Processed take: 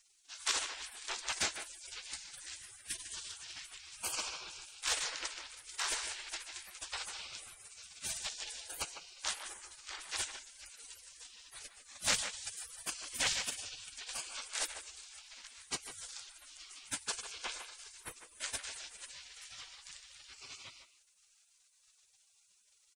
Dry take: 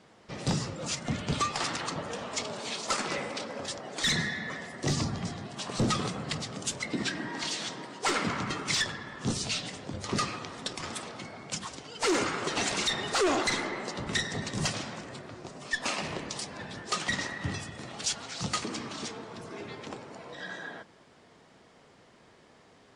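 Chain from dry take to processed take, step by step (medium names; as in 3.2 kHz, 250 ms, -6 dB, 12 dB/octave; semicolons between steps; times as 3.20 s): spectral gate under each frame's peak -25 dB weak; speakerphone echo 150 ms, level -8 dB; trim +7.5 dB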